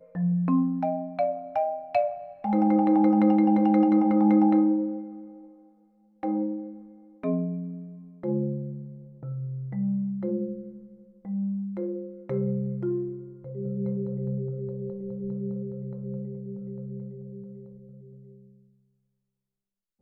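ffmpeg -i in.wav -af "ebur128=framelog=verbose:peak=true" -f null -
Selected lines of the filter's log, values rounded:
Integrated loudness:
  I:         -26.8 LUFS
  Threshold: -37.9 LUFS
Loudness range:
  LRA:        15.8 LU
  Threshold: -48.0 LUFS
  LRA low:   -37.6 LUFS
  LRA high:  -21.9 LUFS
True peak:
  Peak:      -11.0 dBFS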